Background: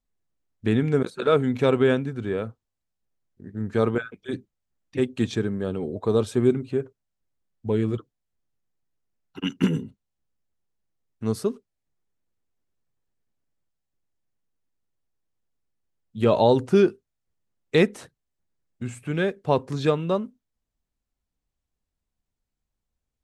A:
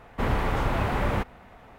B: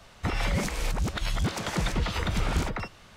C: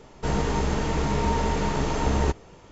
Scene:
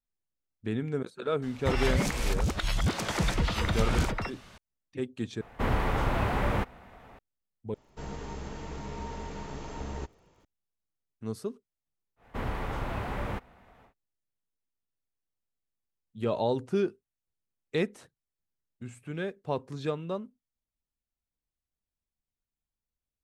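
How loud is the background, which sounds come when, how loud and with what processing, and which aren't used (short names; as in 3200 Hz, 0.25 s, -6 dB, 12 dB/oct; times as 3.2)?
background -10 dB
1.42 add B
5.41 replace with A -2 dB
7.74 replace with C -14.5 dB + crackle 120/s -47 dBFS
12.16 add A -8 dB, fades 0.10 s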